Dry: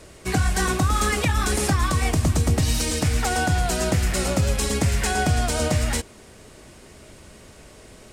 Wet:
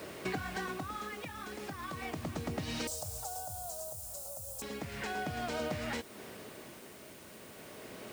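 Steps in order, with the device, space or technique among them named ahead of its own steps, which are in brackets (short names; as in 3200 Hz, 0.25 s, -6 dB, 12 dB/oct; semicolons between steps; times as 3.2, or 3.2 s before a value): medium wave at night (BPF 170–3700 Hz; compressor 5:1, threshold -38 dBFS, peak gain reduction 16.5 dB; tremolo 0.35 Hz, depth 59%; whine 9000 Hz -68 dBFS; white noise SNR 17 dB); 2.87–4.62 EQ curve 100 Hz 0 dB, 240 Hz -26 dB, 380 Hz -21 dB, 600 Hz 0 dB, 1300 Hz -14 dB, 2000 Hz -28 dB, 7800 Hz +13 dB; gain +3 dB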